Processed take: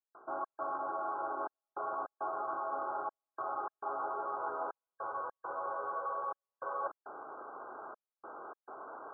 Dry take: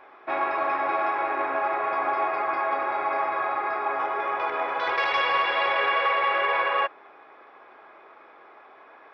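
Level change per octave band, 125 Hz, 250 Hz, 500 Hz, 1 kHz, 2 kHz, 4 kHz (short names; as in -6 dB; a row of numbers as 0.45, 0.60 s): n/a, -11.5 dB, -12.5 dB, -12.5 dB, -23.0 dB, under -40 dB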